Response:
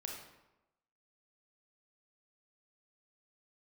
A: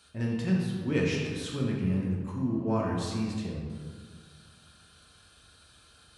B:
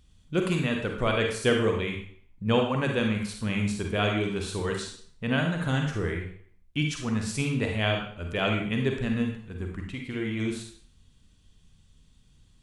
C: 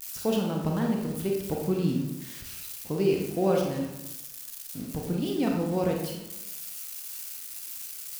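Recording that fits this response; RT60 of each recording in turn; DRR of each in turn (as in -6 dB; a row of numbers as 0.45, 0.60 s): C; 1.8, 0.55, 1.0 s; -3.5, 2.0, -0.5 dB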